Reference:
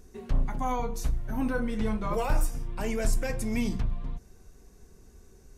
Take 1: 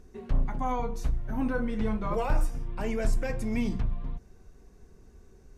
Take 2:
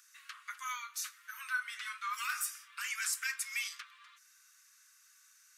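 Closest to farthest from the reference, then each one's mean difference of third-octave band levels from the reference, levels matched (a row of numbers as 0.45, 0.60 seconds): 1, 2; 2.5, 20.0 decibels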